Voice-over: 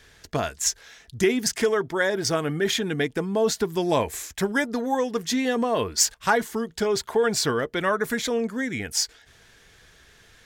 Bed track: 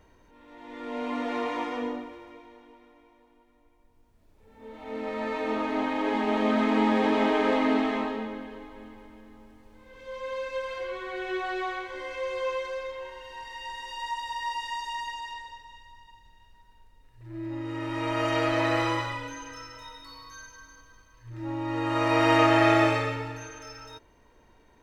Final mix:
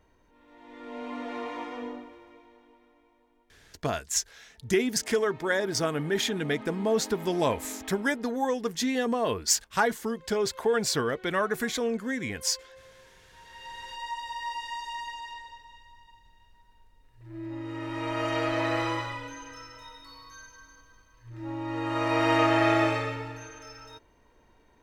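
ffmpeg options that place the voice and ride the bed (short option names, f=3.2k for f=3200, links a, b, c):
-filter_complex "[0:a]adelay=3500,volume=-3.5dB[a];[1:a]volume=10.5dB,afade=t=out:st=3.5:d=0.5:silence=0.223872,afade=t=in:st=13.31:d=0.51:silence=0.158489[b];[a][b]amix=inputs=2:normalize=0"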